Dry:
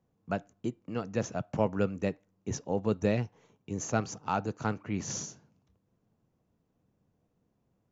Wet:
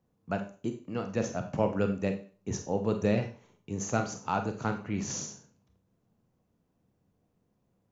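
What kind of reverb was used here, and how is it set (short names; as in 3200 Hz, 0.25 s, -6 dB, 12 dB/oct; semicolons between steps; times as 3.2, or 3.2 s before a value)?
Schroeder reverb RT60 0.38 s, combs from 31 ms, DRR 6 dB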